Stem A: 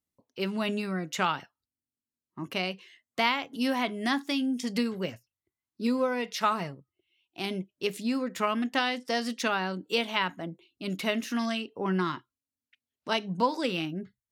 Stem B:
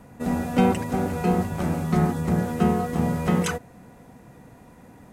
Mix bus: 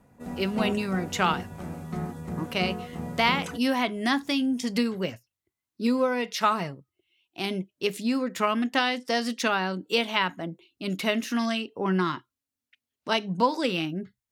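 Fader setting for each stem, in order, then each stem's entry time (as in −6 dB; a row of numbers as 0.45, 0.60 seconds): +3.0, −11.5 decibels; 0.00, 0.00 seconds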